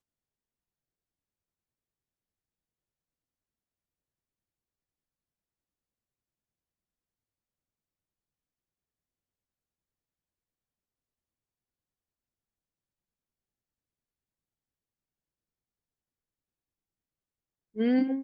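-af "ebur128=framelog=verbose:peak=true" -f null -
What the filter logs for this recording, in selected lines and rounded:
Integrated loudness:
  I:         -27.1 LUFS
  Threshold: -38.1 LUFS
Loudness range:
  LRA:        18.0 LU
  Threshold: -56.8 LUFS
  LRA low:   -52.5 LUFS
  LRA high:  -34.5 LUFS
True peak:
  Peak:      -16.3 dBFS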